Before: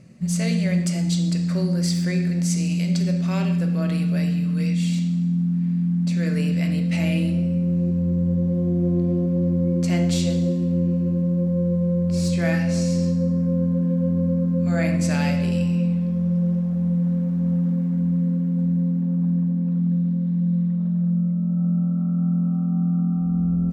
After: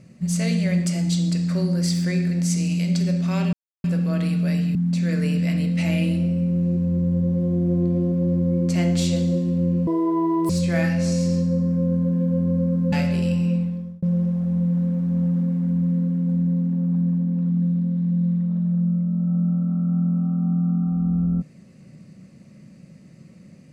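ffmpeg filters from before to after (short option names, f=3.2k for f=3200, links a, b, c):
-filter_complex "[0:a]asplit=7[a][b][c][d][e][f][g];[a]atrim=end=3.53,asetpts=PTS-STARTPTS,afade=t=out:st=3.526:d=0.004:c=hsin,apad=pad_dur=0.31[h];[b]atrim=start=3.53:end=4.442,asetpts=PTS-STARTPTS,afade=t=in:d=0.004:c=hsin[i];[c]atrim=start=5.888:end=11.014[j];[d]atrim=start=11.01:end=12.19,asetpts=PTS-STARTPTS,asetrate=83349,aresample=44100,atrim=end_sample=27533,asetpts=PTS-STARTPTS[k];[e]atrim=start=12.186:end=14.622[l];[f]atrim=start=15.218:end=16.32,asetpts=PTS-STARTPTS,afade=t=out:st=0.612:d=0.49[m];[g]atrim=start=16.32,asetpts=PTS-STARTPTS,afade=t=in:d=0.004:c=hsin[n];[h][i]concat=n=2:v=0:a=1[o];[o][j]acrossfade=d=0.004:c1=hsin:c2=hsin[p];[p][k]acrossfade=d=0.004:c1=hsin:c2=hsin[q];[q][l]acrossfade=d=0.004:c1=hsin:c2=hsin[r];[m][n]concat=n=2:v=0:a=1[s];[r][s]acrossfade=d=0.004:c1=hsin:c2=hsin"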